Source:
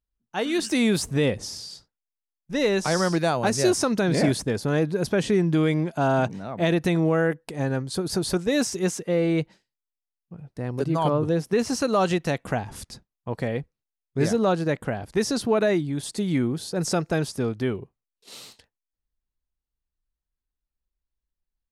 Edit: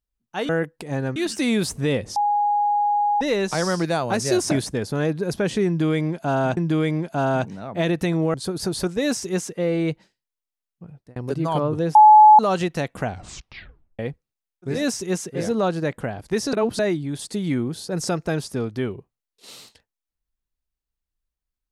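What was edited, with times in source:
1.49–2.54 s: bleep 826 Hz -17 dBFS
3.84–4.24 s: delete
5.40–6.30 s: loop, 2 plays
7.17–7.84 s: move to 0.49 s
8.47–9.13 s: copy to 14.24 s, crossfade 0.24 s
10.38–10.66 s: fade out
11.45–11.89 s: bleep 854 Hz -6 dBFS
12.55 s: tape stop 0.94 s
15.37–15.63 s: reverse

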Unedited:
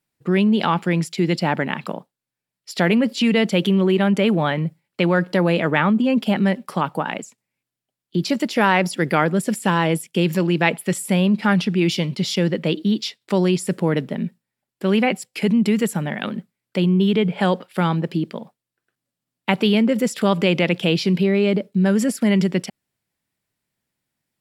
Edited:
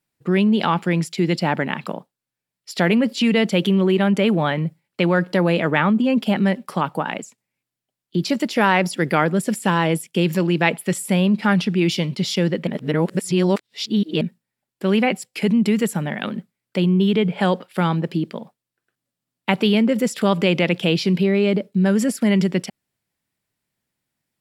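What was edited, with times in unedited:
12.67–14.21 s: reverse

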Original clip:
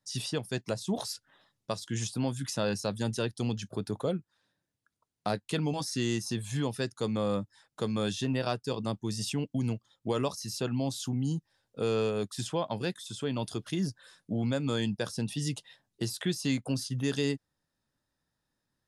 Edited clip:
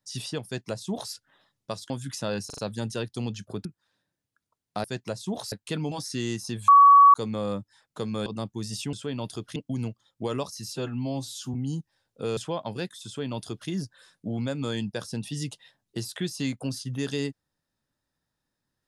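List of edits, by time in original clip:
0.45–1.13 s: copy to 5.34 s
1.90–2.25 s: delete
2.81 s: stutter 0.04 s, 4 plays
3.88–4.15 s: delete
6.50–6.96 s: bleep 1.13 kHz -10 dBFS
8.08–8.74 s: delete
10.58–11.12 s: stretch 1.5×
11.95–12.42 s: delete
13.11–13.74 s: copy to 9.41 s

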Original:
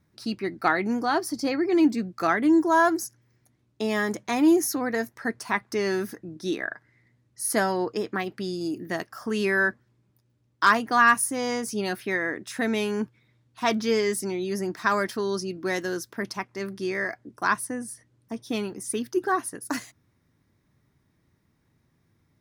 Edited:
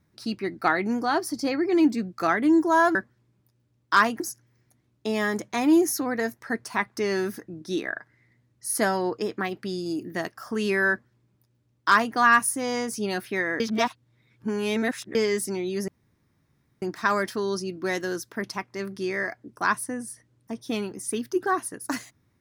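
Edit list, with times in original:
9.65–10.90 s: copy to 2.95 s
12.35–13.90 s: reverse
14.63 s: insert room tone 0.94 s

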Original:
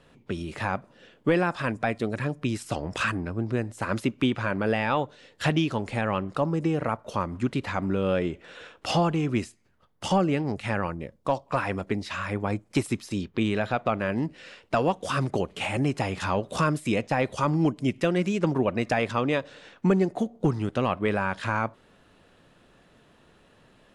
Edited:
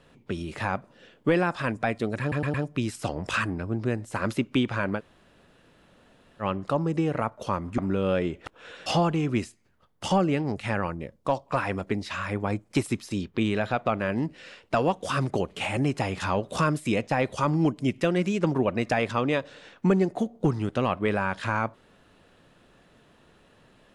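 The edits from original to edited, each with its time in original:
2.21 s: stutter 0.11 s, 4 plays
4.65–6.09 s: room tone, crossfade 0.06 s
7.45–7.78 s: delete
8.46–8.86 s: reverse

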